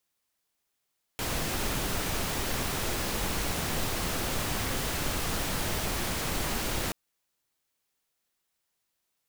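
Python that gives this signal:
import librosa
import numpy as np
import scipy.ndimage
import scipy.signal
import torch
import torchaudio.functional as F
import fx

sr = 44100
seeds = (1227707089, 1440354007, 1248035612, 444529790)

y = fx.noise_colour(sr, seeds[0], length_s=5.73, colour='pink', level_db=-30.5)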